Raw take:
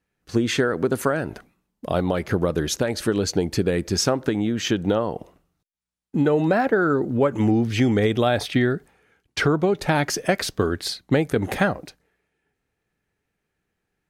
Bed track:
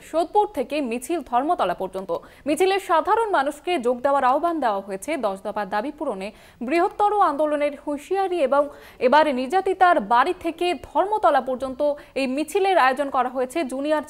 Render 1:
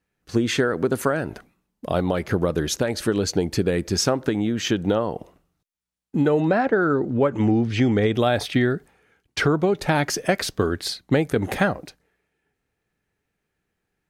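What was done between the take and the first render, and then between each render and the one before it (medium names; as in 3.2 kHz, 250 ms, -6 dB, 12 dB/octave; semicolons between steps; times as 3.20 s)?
6.40–8.14 s: distance through air 68 m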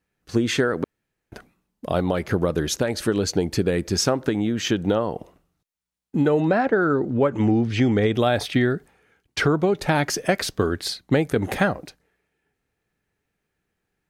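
0.84–1.32 s: room tone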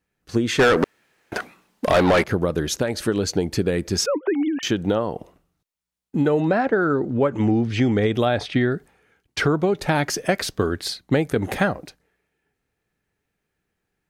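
0.59–2.24 s: overdrive pedal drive 26 dB, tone 4.8 kHz, clips at -8 dBFS; 4.06–4.63 s: formants replaced by sine waves; 8.25–8.72 s: distance through air 76 m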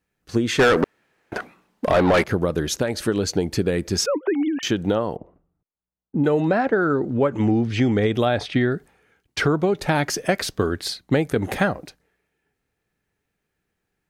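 0.81–2.14 s: treble shelf 2.7 kHz -8 dB; 5.16–6.24 s: Bessel low-pass 790 Hz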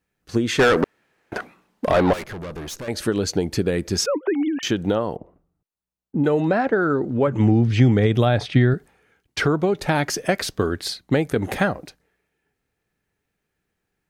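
2.13–2.88 s: valve stage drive 30 dB, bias 0.55; 7.27–8.74 s: peaking EQ 130 Hz +9.5 dB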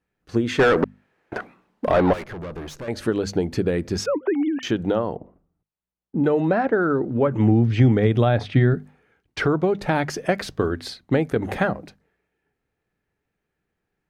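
treble shelf 3.9 kHz -11.5 dB; hum notches 50/100/150/200/250 Hz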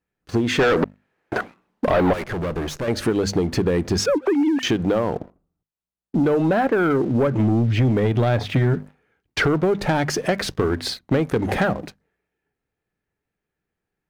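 compression 2.5:1, threshold -23 dBFS, peak gain reduction 8.5 dB; waveshaping leveller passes 2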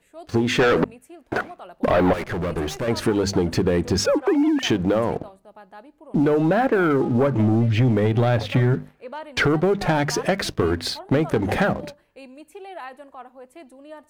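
add bed track -19 dB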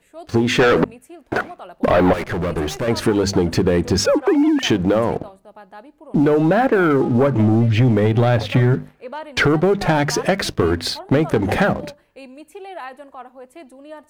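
trim +3.5 dB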